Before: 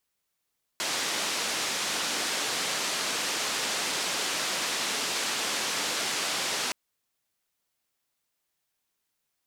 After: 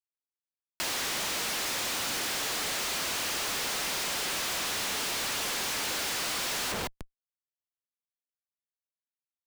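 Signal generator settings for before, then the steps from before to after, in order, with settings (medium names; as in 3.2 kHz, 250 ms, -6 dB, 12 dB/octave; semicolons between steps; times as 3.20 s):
noise band 220–6400 Hz, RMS -30 dBFS 5.92 s
thinning echo 153 ms, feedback 41%, high-pass 930 Hz, level -17.5 dB; Schmitt trigger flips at -44.5 dBFS; three bands compressed up and down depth 40%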